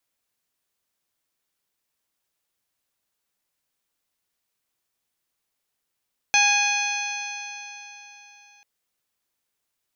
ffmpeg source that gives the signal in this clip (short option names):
-f lavfi -i "aevalsrc='0.0794*pow(10,-3*t/3.58)*sin(2*PI*818.31*t)+0.0596*pow(10,-3*t/3.58)*sin(2*PI*1644.42*t)+0.141*pow(10,-3*t/3.58)*sin(2*PI*2486.04*t)+0.0447*pow(10,-3*t/3.58)*sin(2*PI*3350.62*t)+0.0473*pow(10,-3*t/3.58)*sin(2*PI*4245.26*t)+0.0266*pow(10,-3*t/3.58)*sin(2*PI*5176.66*t)+0.0841*pow(10,-3*t/3.58)*sin(2*PI*6151.05*t)':d=2.29:s=44100"